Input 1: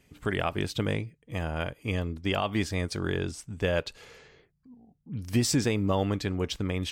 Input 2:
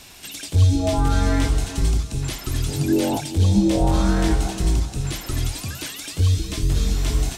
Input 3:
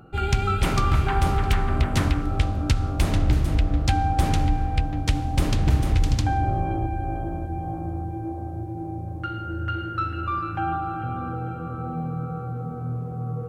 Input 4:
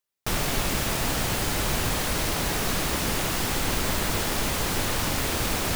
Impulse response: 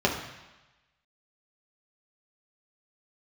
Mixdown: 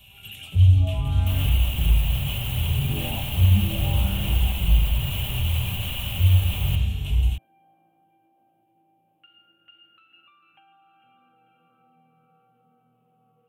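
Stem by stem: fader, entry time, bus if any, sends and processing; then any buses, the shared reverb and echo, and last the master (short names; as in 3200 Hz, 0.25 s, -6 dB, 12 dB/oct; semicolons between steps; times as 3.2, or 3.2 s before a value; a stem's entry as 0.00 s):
-16.0 dB, 0.00 s, no send, dry
-8.0 dB, 0.00 s, send -6 dB, dry
-10.0 dB, 0.00 s, no send, steep high-pass 230 Hz; compressor, threshold -31 dBFS, peak gain reduction 9.5 dB
-1.0 dB, 1.00 s, send -10 dB, limiter -19 dBFS, peak gain reduction 7 dB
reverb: on, RT60 1.1 s, pre-delay 3 ms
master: EQ curve 120 Hz 0 dB, 330 Hz -25 dB, 770 Hz -14 dB, 1400 Hz -18 dB, 1900 Hz -13 dB, 2900 Hz +7 dB, 4900 Hz -28 dB, 9000 Hz -9 dB, 14000 Hz +1 dB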